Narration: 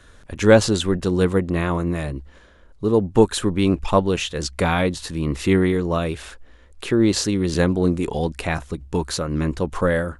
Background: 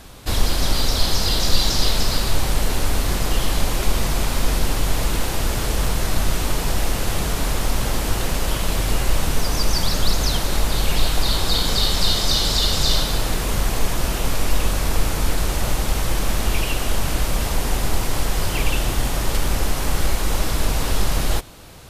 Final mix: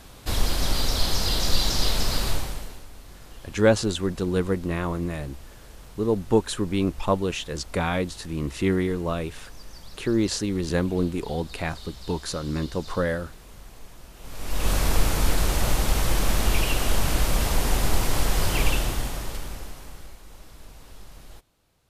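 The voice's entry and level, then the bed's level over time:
3.15 s, -5.5 dB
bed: 2.3 s -4.5 dB
2.87 s -24.5 dB
14.14 s -24.5 dB
14.71 s -1.5 dB
18.67 s -1.5 dB
20.21 s -25.5 dB

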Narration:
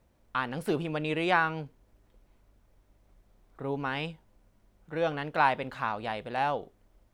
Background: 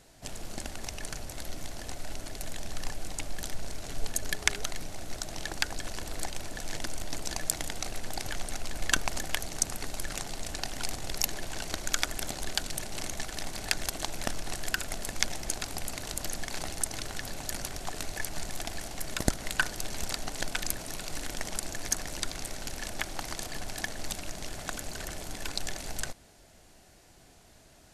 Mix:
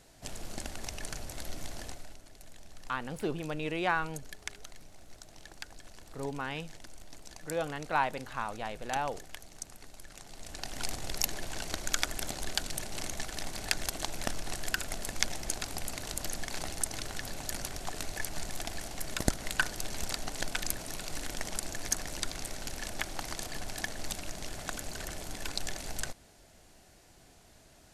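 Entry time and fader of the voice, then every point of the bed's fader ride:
2.55 s, -4.5 dB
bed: 1.83 s -1.5 dB
2.21 s -14.5 dB
10.14 s -14.5 dB
10.82 s -1.5 dB

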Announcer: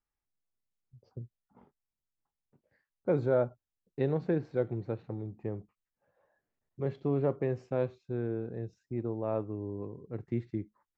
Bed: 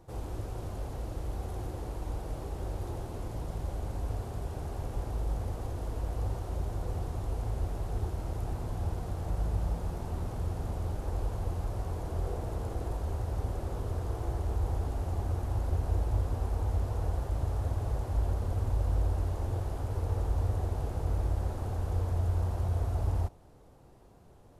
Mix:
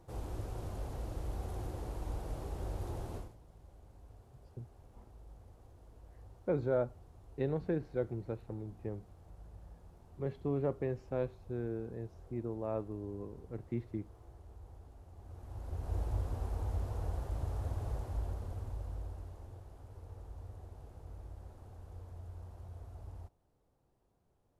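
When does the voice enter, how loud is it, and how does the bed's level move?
3.40 s, -4.5 dB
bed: 3.17 s -3.5 dB
3.37 s -22 dB
15.13 s -22 dB
15.99 s -6 dB
17.93 s -6 dB
19.63 s -18.5 dB

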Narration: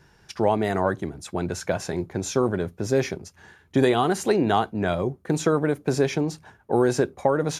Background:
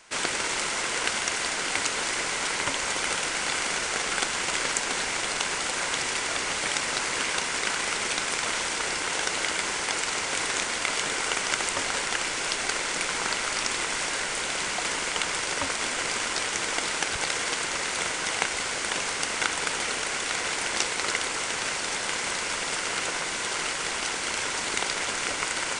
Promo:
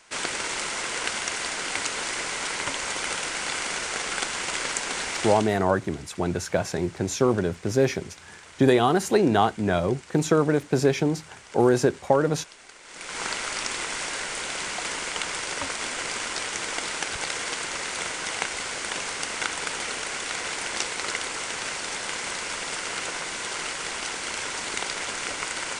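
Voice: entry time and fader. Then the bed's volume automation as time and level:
4.85 s, +1.0 dB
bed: 5.27 s -1.5 dB
5.63 s -20 dB
12.8 s -20 dB
13.21 s -2 dB

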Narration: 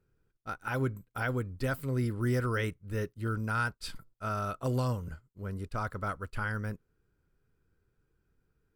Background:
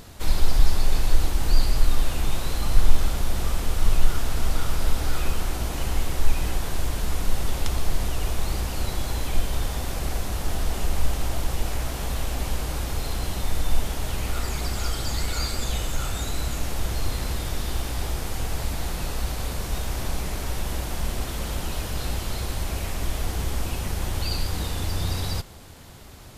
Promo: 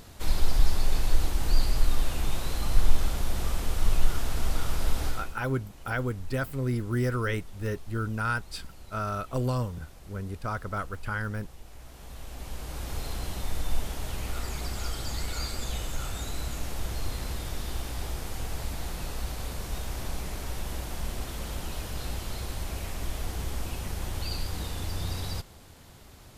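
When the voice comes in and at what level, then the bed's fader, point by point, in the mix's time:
4.70 s, +2.0 dB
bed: 5.07 s -4 dB
5.42 s -21.5 dB
11.65 s -21.5 dB
12.95 s -6 dB

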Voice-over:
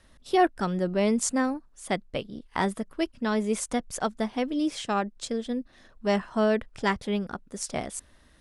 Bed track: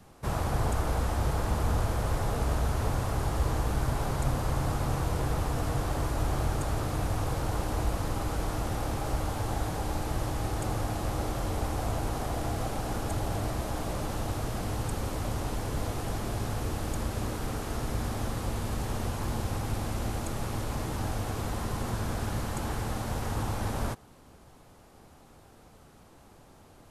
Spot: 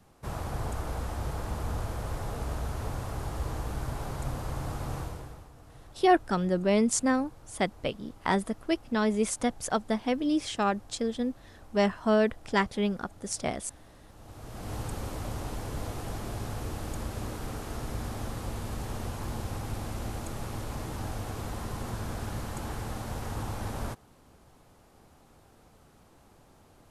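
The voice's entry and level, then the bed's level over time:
5.70 s, 0.0 dB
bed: 5 s -5.5 dB
5.51 s -22.5 dB
14.06 s -22.5 dB
14.74 s -3.5 dB

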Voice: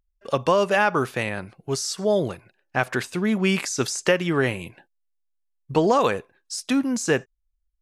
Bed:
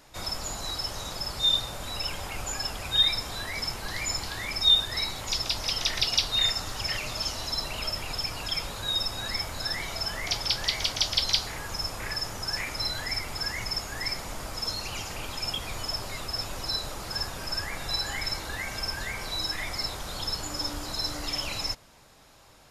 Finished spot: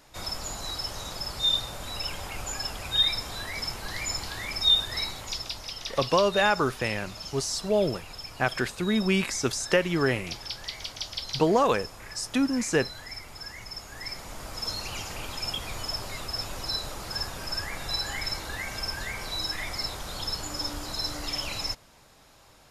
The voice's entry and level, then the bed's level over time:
5.65 s, -3.0 dB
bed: 5.02 s -1 dB
5.73 s -9 dB
13.66 s -9 dB
14.73 s -0.5 dB

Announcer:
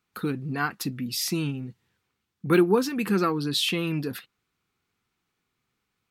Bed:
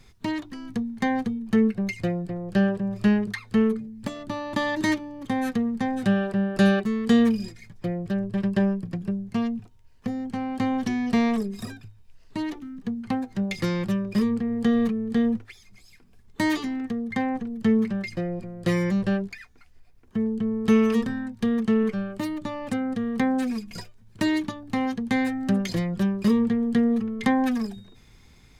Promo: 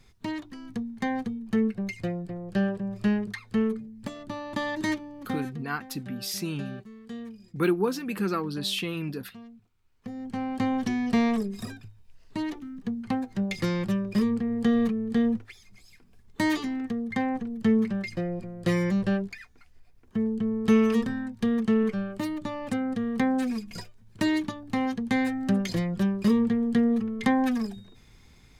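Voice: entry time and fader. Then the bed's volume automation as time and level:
5.10 s, -4.5 dB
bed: 5.31 s -4.5 dB
5.64 s -20.5 dB
9.63 s -20.5 dB
10.39 s -1.5 dB

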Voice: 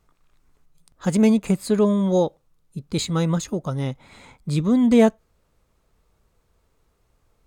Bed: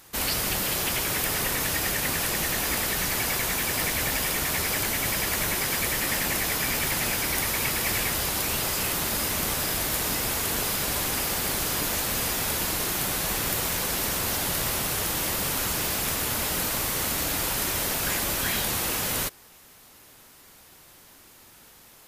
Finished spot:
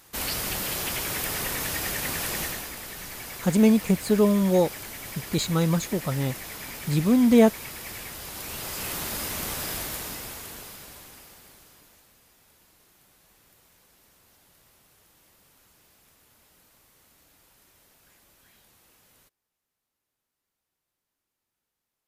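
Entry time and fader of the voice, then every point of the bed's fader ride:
2.40 s, -1.5 dB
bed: 2.43 s -3 dB
2.73 s -12 dB
8.19 s -12 dB
8.94 s -4.5 dB
9.76 s -4.5 dB
12.2 s -33 dB

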